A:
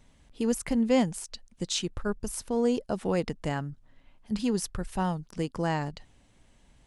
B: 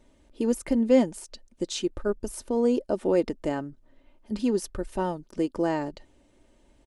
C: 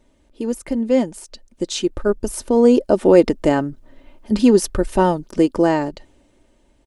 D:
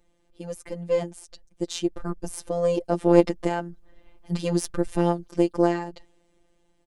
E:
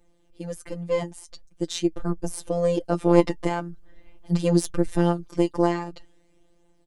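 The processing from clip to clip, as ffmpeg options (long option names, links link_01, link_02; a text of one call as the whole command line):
ffmpeg -i in.wav -af "equalizer=frequency=420:width=1.1:gain=12,aecho=1:1:3.3:0.46,volume=-4dB" out.wav
ffmpeg -i in.wav -af "dynaudnorm=framelen=280:gausssize=11:maxgain=13.5dB,volume=1.5dB" out.wav
ffmpeg -i in.wav -af "afftfilt=real='hypot(re,im)*cos(PI*b)':imag='0':win_size=1024:overlap=0.75,aeval=exprs='1.12*(cos(1*acos(clip(val(0)/1.12,-1,1)))-cos(1*PI/2))+0.224*(cos(2*acos(clip(val(0)/1.12,-1,1)))-cos(2*PI/2))':channel_layout=same,volume=-4.5dB" out.wav
ffmpeg -i in.wav -af "flanger=delay=5.9:depth=1:regen=50:speed=0.45:shape=triangular,volume=5.5dB" out.wav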